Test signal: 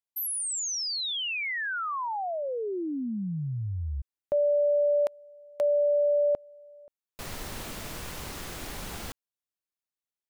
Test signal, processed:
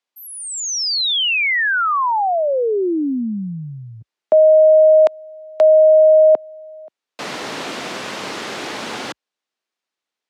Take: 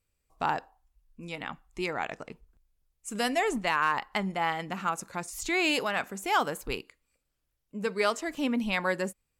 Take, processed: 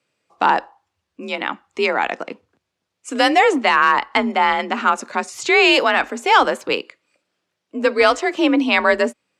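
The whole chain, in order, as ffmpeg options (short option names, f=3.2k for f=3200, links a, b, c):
-af "highpass=210,lowpass=5k,apsyclip=19dB,afreqshift=42,volume=-5dB"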